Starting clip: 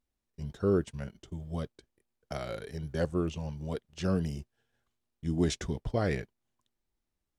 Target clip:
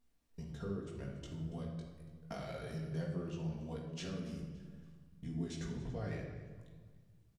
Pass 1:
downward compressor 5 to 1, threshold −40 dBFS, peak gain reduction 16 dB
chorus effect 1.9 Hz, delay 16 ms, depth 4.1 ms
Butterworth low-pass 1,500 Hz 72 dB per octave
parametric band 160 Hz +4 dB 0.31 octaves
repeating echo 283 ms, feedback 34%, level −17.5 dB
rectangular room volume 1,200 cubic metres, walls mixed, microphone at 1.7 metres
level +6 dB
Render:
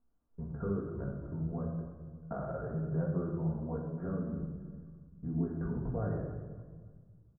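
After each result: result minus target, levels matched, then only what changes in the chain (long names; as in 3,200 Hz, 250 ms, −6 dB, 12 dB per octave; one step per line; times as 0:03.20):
2,000 Hz band −7.5 dB; downward compressor: peak gain reduction −6.5 dB
remove: Butterworth low-pass 1,500 Hz 72 dB per octave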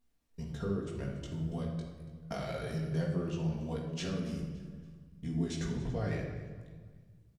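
downward compressor: peak gain reduction −6.5 dB
change: downward compressor 5 to 1, threshold −48 dBFS, peak gain reduction 22.5 dB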